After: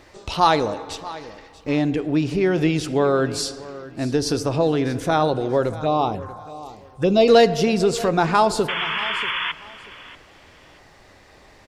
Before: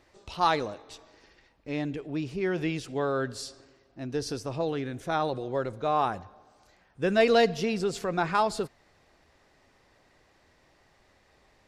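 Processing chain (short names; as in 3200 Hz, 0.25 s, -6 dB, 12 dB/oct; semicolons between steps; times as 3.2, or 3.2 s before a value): dynamic EQ 1800 Hz, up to -4 dB, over -41 dBFS, Q 1; in parallel at 0 dB: compressor, threshold -34 dBFS, peak gain reduction 15 dB; on the sum: FDN reverb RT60 2.1 s, low-frequency decay 0.7×, high-frequency decay 0.25×, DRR 15 dB; 5.74–7.28 envelope phaser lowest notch 230 Hz, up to 1700 Hz, full sweep at -21.5 dBFS; 8.68–9.52 painted sound noise 890–3500 Hz -32 dBFS; on a send: feedback echo 0.636 s, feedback 24%, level -17.5 dB; on the sum: gain +7 dB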